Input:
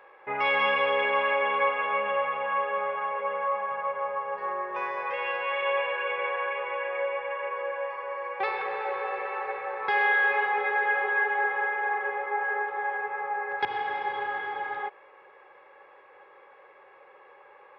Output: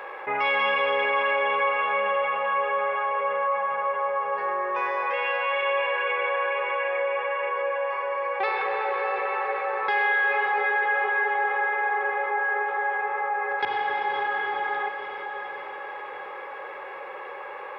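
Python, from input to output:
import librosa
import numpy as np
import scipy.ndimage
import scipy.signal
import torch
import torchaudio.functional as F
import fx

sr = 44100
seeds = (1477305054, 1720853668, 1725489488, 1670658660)

p1 = fx.low_shelf(x, sr, hz=190.0, db=-7.5)
p2 = p1 + fx.echo_diffused(p1, sr, ms=582, feedback_pct=45, wet_db=-14.0, dry=0)
y = fx.env_flatten(p2, sr, amount_pct=50)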